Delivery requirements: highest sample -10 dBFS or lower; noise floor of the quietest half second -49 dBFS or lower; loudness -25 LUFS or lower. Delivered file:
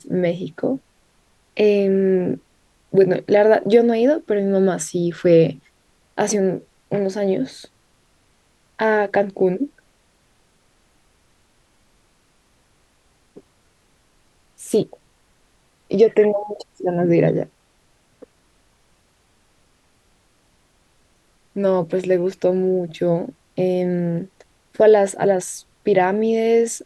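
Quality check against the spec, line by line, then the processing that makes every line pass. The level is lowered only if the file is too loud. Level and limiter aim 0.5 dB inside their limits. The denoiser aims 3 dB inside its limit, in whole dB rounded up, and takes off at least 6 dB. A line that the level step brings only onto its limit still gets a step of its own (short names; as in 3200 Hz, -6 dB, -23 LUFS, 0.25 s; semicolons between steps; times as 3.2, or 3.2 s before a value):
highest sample -3.0 dBFS: fail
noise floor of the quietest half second -60 dBFS: OK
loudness -19.0 LUFS: fail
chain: gain -6.5 dB; limiter -10.5 dBFS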